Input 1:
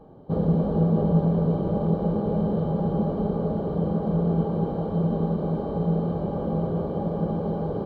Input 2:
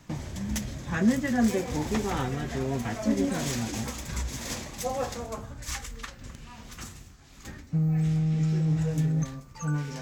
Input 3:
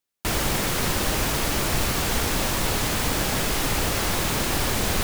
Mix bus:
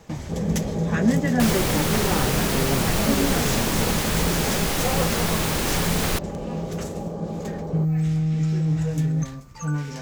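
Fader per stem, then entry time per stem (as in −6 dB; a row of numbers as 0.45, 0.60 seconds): −3.5, +3.0, −0.5 decibels; 0.00, 0.00, 1.15 seconds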